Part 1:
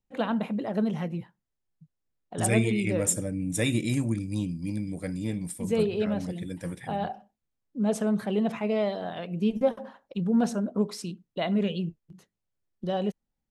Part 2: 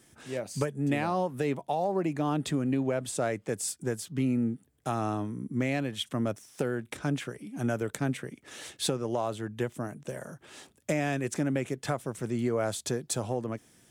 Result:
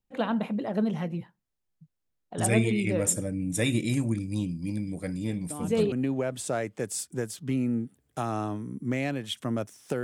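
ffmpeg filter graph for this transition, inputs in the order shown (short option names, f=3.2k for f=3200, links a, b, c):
-filter_complex "[1:a]asplit=2[a][b];[0:a]apad=whole_dur=10.03,atrim=end=10.03,atrim=end=5.922[c];[b]atrim=start=2.608:end=6.72[d];[a]atrim=start=2.19:end=2.61,asetpts=PTS-STARTPTS,volume=-10.5dB,afade=t=in:d=0.004:c=hsin,afade=t=out:st=0.416:d=0.004:c=hsin,adelay=5500[e];[c][d]acrossfade=d=0.004:c1=hsin:c2=hsin[f];[f][e]amix=inputs=2:normalize=0"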